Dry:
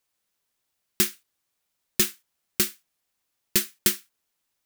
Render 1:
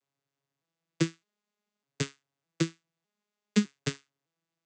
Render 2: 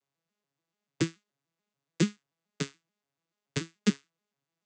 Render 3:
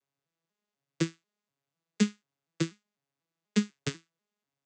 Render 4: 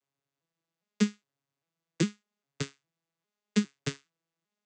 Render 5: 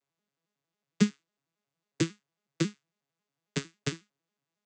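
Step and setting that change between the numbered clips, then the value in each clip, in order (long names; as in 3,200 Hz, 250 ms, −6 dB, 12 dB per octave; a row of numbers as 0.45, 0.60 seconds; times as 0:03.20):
vocoder with an arpeggio as carrier, a note every: 607, 144, 246, 404, 91 milliseconds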